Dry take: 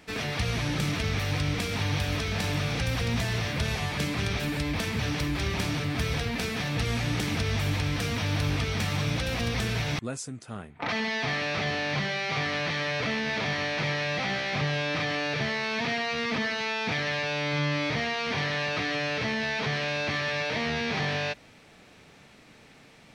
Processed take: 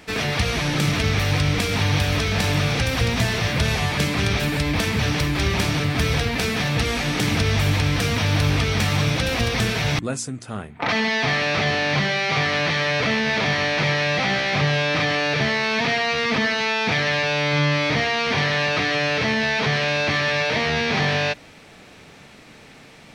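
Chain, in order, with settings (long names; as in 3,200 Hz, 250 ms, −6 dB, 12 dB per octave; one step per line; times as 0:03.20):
hum removal 58.17 Hz, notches 5
level +8 dB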